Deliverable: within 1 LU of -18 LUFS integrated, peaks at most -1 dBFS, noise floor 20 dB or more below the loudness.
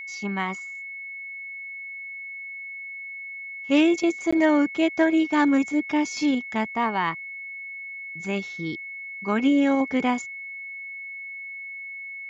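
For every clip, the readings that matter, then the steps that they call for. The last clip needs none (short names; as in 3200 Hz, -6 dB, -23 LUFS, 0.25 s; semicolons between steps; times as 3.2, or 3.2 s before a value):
dropouts 1; longest dropout 15 ms; steady tone 2200 Hz; tone level -34 dBFS; loudness -26.0 LUFS; peak -11.0 dBFS; loudness target -18.0 LUFS
-> interpolate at 4.31, 15 ms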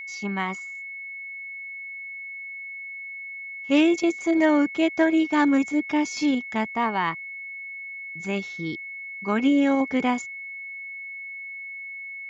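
dropouts 0; steady tone 2200 Hz; tone level -34 dBFS
-> notch 2200 Hz, Q 30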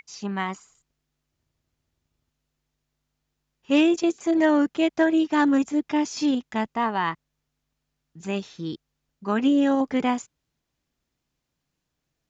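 steady tone none; loudness -23.5 LUFS; peak -11.0 dBFS; loudness target -18.0 LUFS
-> gain +5.5 dB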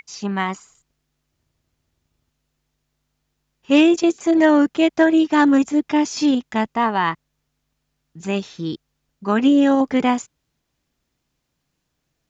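loudness -18.0 LUFS; peak -5.5 dBFS; noise floor -75 dBFS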